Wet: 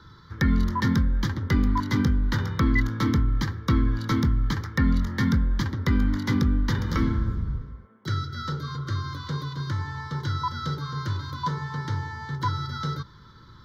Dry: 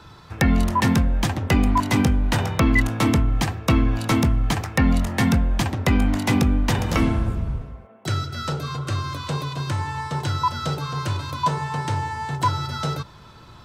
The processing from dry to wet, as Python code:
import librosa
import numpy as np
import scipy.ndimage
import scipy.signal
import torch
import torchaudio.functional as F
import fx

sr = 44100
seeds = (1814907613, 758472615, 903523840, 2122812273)

y = fx.high_shelf(x, sr, hz=6500.0, db=-6.5)
y = fx.fixed_phaser(y, sr, hz=2600.0, stages=6)
y = F.gain(torch.from_numpy(y), -2.5).numpy()